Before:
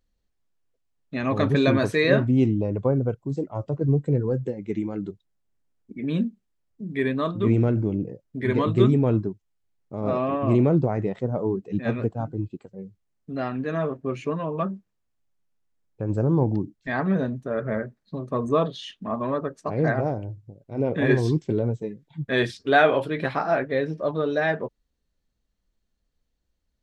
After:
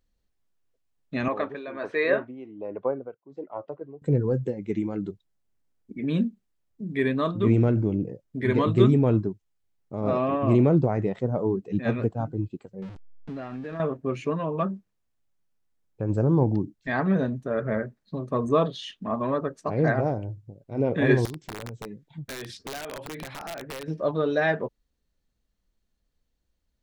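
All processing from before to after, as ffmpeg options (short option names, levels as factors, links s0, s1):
-filter_complex "[0:a]asettb=1/sr,asplit=3[s0][s1][s2];[s0]atrim=end=1.284[s3];[s1]atrim=start=1.28:end=4.02,asetpts=PTS-STARTPTS,afade=t=in:d=0.004:c=qsin,afade=t=out:st=2.736:d=0.004:c=qsin,highpass=440,lowpass=2200,tremolo=f=1.3:d=0.79[s4];[s2]atrim=start=4.016[s5];[s3][s4]acrossfade=d=0.004:c1=hsin:c2=qsin[s6];[s6][s5]acrossfade=d=0.004:c1=qsin:c2=hsin,asettb=1/sr,asplit=3[s7][s8][s9];[s7]atrim=end=12.824[s10];[s8]atrim=start=12.82:end=13.8,asetpts=PTS-STARTPTS,afade=t=in:d=0.004:c=qsin,afade=t=out:st=0.976:d=0.004:c=qsin,aeval=exprs='val(0)+0.5*0.0141*sgn(val(0))':c=same,lowpass=3800,acompressor=threshold=0.0282:ratio=10:attack=3.2:release=140:knee=1:detection=peak[s11];[s9]atrim=start=13.796[s12];[s10][s11]acrossfade=d=0.004:c1=hsin:c2=qsin[s13];[s13][s12]acrossfade=d=0.004:c1=qsin:c2=hsin,asettb=1/sr,asplit=3[s14][s15][s16];[s14]atrim=end=21.254[s17];[s15]atrim=start=21.25:end=23.88,asetpts=PTS-STARTPTS,afade=t=in:d=0.004:c=qsin,afade=t=out:st=2.626:d=0.004:c=qsin,acompressor=threshold=0.0251:ratio=16:attack=3.2:release=140:knee=1:detection=peak,aeval=exprs='(mod(28.2*val(0)+1,2)-1)/28.2':c=same[s18];[s16]atrim=start=23.876[s19];[s17][s18]acrossfade=d=0.004:c1=hsin:c2=qsin[s20];[s20][s19]acrossfade=d=0.004:c1=qsin:c2=hsin"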